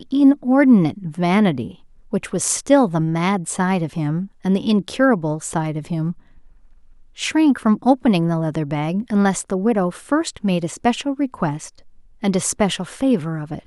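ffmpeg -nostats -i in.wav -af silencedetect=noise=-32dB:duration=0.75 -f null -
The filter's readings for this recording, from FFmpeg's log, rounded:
silence_start: 6.12
silence_end: 7.18 | silence_duration: 1.06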